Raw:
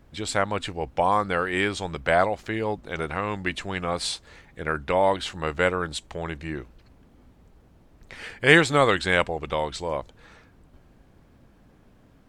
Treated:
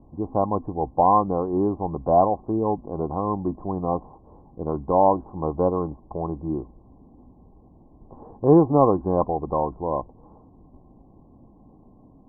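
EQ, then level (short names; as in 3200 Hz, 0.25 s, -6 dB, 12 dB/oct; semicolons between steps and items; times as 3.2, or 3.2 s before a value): rippled Chebyshev low-pass 1100 Hz, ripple 6 dB; +7.5 dB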